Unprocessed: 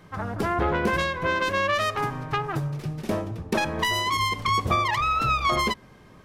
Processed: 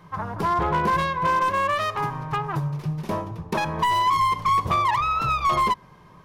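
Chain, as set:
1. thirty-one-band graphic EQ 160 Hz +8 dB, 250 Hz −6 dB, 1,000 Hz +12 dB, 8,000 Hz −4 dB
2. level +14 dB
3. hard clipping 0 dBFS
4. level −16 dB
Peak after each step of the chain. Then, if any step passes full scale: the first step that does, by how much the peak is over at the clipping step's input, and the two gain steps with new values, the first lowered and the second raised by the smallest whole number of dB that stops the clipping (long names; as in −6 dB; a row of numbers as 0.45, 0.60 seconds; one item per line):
−5.5, +8.5, 0.0, −16.0 dBFS
step 2, 8.5 dB
step 2 +5 dB, step 4 −7 dB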